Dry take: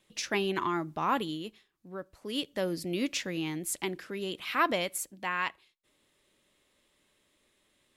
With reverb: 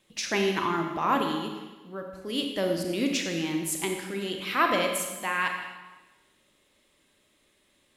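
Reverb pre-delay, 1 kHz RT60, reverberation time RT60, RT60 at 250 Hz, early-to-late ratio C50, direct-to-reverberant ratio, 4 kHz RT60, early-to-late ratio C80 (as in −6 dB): 31 ms, 1.2 s, 1.2 s, 1.2 s, 4.5 dB, 3.0 dB, 1.1 s, 6.0 dB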